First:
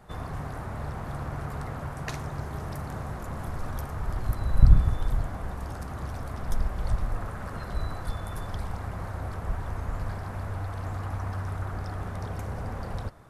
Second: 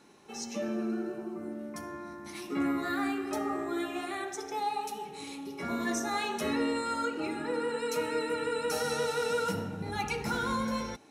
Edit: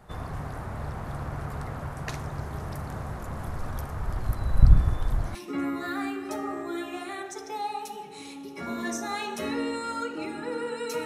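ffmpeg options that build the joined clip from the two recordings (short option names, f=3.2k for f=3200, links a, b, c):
-filter_complex "[1:a]asplit=2[a][b];[0:a]apad=whole_dur=11.05,atrim=end=11.05,atrim=end=5.352[c];[b]atrim=start=2.368:end=8.07[d];[a]atrim=start=1.79:end=2.37,asetpts=PTS-STARTPTS,volume=-6.5dB,afade=t=in:d=0.004:c=hsin,afade=t=out:st=0.576:d=0.004:c=hsin,adelay=210357S[e];[c][d]acrossfade=d=0.004:c1=hsin:c2=hsin[f];[f][e]amix=inputs=2:normalize=0"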